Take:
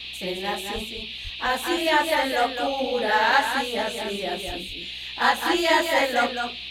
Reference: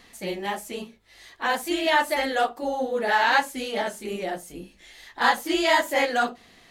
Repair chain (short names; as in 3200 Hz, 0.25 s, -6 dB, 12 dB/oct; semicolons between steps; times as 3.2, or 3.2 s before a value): de-hum 62.6 Hz, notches 7; de-plosive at 0.74/1.23/4.46; noise print and reduce 18 dB; inverse comb 0.211 s -6 dB